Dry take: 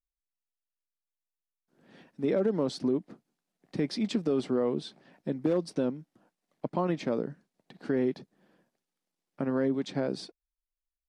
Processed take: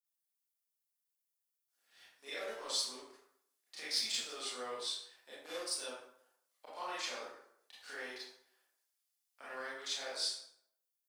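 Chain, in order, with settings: HPF 660 Hz 12 dB/oct; differentiator; sample leveller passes 1; reverb RT60 0.70 s, pre-delay 23 ms, DRR -9.5 dB; gain -1 dB

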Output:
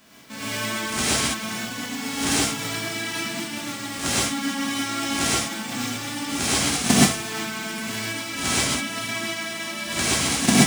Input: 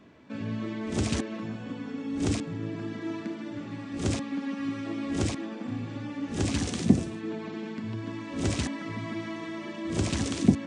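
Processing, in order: spectral whitening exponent 0.3; non-linear reverb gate 0.15 s rising, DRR -6.5 dB; gain -1.5 dB

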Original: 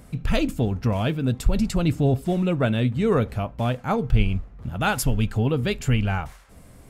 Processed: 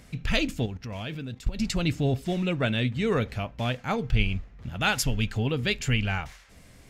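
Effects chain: 0.66–1.6 level quantiser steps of 15 dB; band shelf 3400 Hz +8.5 dB 2.3 oct; gain -5 dB

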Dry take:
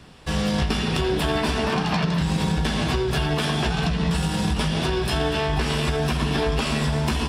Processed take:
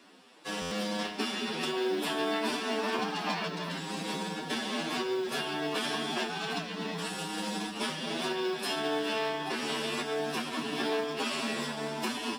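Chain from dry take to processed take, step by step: Chebyshev high-pass 250 Hz, order 3; time stretch by phase-locked vocoder 1.7×; modulation noise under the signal 33 dB; stuck buffer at 0.61, samples 512; gain -6 dB

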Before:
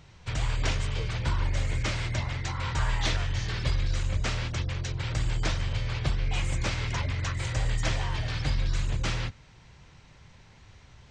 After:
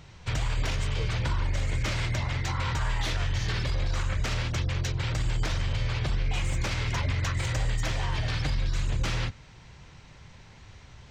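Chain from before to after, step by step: tracing distortion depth 0.025 ms; 3.73–4.22 bell 520 Hz -> 1900 Hz +10 dB 1.2 oct; limiter -23 dBFS, peak gain reduction 8 dB; gain +3.5 dB

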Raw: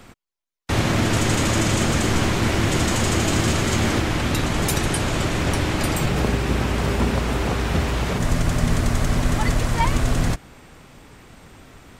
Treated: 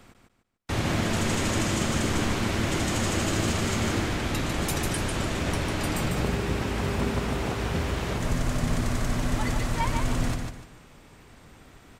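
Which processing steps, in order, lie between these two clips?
feedback echo 0.148 s, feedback 30%, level -5 dB; gain -7 dB

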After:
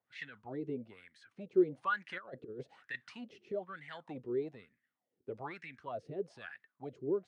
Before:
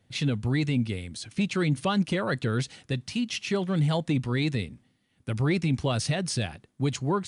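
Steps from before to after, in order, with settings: wah 1.1 Hz 380–1900 Hz, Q 8.7; 2.09–3.52 negative-ratio compressor -45 dBFS, ratio -0.5; rotary speaker horn 7.5 Hz, later 0.85 Hz, at 0.28; gain +6 dB

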